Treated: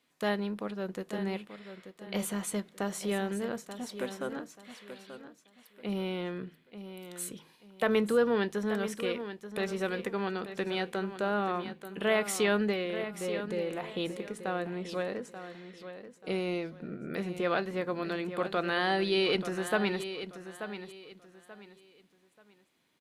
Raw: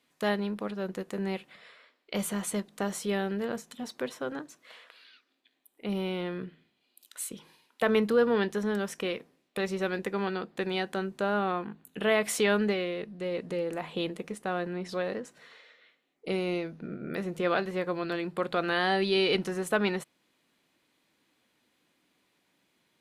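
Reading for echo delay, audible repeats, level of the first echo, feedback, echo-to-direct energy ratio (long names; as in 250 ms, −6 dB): 884 ms, 3, −11.0 dB, 28%, −10.5 dB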